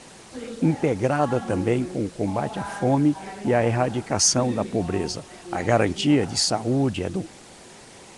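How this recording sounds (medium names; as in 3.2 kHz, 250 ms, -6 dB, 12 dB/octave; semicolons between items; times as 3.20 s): a quantiser's noise floor 8-bit, dither triangular; Nellymoser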